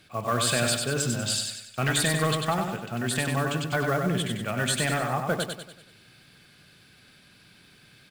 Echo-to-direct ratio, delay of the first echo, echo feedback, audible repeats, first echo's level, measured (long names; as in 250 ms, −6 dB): −3.5 dB, 96 ms, 46%, 5, −4.5 dB